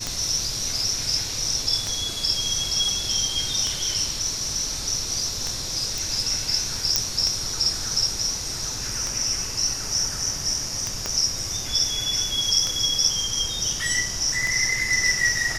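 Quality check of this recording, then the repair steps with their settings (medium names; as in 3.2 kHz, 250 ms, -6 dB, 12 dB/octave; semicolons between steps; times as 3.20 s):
tick 33 1/3 rpm -11 dBFS
5.98 s: pop
6.96 s: pop -5 dBFS
11.06 s: pop -11 dBFS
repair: de-click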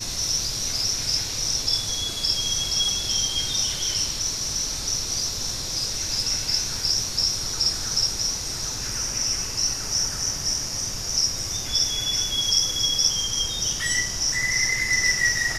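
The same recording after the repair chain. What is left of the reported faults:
11.06 s: pop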